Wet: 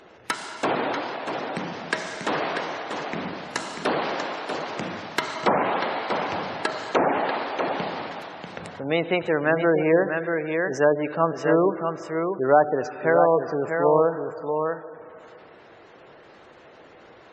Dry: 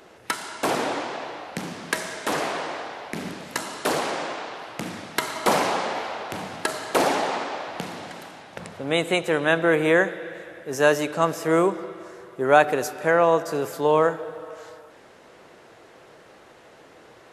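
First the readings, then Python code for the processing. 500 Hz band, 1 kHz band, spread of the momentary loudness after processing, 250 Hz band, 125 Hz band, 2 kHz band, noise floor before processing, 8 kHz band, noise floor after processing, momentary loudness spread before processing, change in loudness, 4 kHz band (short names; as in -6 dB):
+1.0 dB, 0.0 dB, 12 LU, +1.0 dB, +1.0 dB, -2.0 dB, -50 dBFS, n/a, -49 dBFS, 16 LU, -0.5 dB, -3.0 dB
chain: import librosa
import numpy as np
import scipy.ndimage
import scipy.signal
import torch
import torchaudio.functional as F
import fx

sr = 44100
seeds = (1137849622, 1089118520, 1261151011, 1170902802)

y = x + 10.0 ** (-6.5 / 20.0) * np.pad(x, (int(640 * sr / 1000.0), 0))[:len(x)]
y = fx.env_lowpass_down(y, sr, base_hz=1100.0, full_db=-14.0)
y = fx.spec_gate(y, sr, threshold_db=-25, keep='strong')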